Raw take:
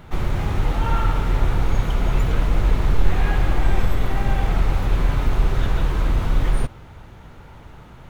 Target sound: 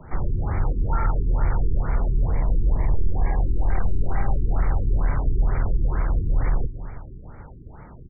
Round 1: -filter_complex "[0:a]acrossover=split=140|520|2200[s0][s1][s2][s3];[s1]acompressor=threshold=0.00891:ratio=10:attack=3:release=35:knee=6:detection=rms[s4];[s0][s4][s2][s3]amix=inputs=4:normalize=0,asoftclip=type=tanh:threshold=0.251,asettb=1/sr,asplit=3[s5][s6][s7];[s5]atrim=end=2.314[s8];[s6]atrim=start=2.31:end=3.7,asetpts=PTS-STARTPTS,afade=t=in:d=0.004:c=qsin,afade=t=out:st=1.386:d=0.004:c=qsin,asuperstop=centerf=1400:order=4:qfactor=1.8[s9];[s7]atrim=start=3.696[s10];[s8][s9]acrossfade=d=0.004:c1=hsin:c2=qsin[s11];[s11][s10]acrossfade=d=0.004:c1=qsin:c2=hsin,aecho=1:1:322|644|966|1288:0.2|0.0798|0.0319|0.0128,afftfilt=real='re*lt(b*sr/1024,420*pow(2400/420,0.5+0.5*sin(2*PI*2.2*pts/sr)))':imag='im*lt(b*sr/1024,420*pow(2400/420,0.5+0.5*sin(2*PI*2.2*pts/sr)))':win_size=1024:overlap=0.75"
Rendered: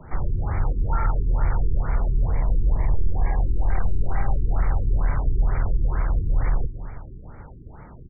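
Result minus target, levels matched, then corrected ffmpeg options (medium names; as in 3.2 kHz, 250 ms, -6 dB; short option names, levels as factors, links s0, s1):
compression: peak gain reduction +5.5 dB
-filter_complex "[0:a]acrossover=split=140|520|2200[s0][s1][s2][s3];[s1]acompressor=threshold=0.0178:ratio=10:attack=3:release=35:knee=6:detection=rms[s4];[s0][s4][s2][s3]amix=inputs=4:normalize=0,asoftclip=type=tanh:threshold=0.251,asettb=1/sr,asplit=3[s5][s6][s7];[s5]atrim=end=2.314[s8];[s6]atrim=start=2.31:end=3.7,asetpts=PTS-STARTPTS,afade=t=in:d=0.004:c=qsin,afade=t=out:st=1.386:d=0.004:c=qsin,asuperstop=centerf=1400:order=4:qfactor=1.8[s9];[s7]atrim=start=3.696[s10];[s8][s9]acrossfade=d=0.004:c1=hsin:c2=qsin[s11];[s11][s10]acrossfade=d=0.004:c1=qsin:c2=hsin,aecho=1:1:322|644|966|1288:0.2|0.0798|0.0319|0.0128,afftfilt=real='re*lt(b*sr/1024,420*pow(2400/420,0.5+0.5*sin(2*PI*2.2*pts/sr)))':imag='im*lt(b*sr/1024,420*pow(2400/420,0.5+0.5*sin(2*PI*2.2*pts/sr)))':win_size=1024:overlap=0.75"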